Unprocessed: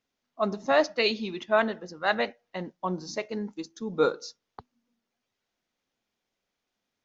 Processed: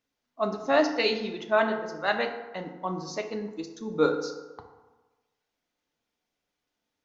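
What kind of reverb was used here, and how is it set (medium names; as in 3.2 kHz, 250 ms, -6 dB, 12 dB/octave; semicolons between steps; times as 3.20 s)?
FDN reverb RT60 1.2 s, low-frequency decay 0.85×, high-frequency decay 0.5×, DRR 4 dB; trim -1.5 dB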